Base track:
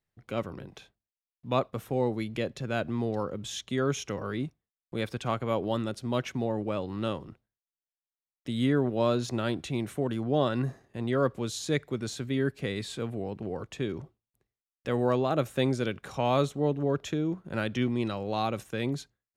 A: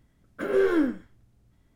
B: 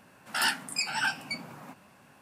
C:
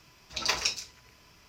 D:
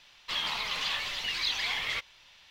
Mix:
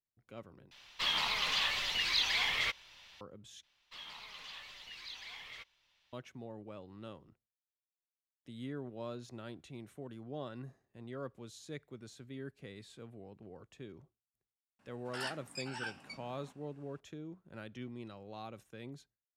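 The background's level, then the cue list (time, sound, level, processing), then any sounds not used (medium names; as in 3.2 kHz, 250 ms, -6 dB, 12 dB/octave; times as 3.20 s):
base track -17 dB
0.71 s: replace with D -0.5 dB
3.63 s: replace with D -17 dB
14.79 s: add B -13.5 dB + low-pass 8.4 kHz
not used: A, C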